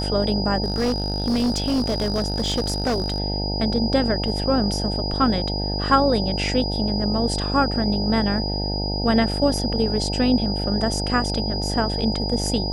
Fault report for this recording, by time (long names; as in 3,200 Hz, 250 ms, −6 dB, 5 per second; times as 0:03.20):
mains buzz 50 Hz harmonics 18 −26 dBFS
whistle 4,900 Hz −28 dBFS
0:00.63–0:03.20: clipping −17.5 dBFS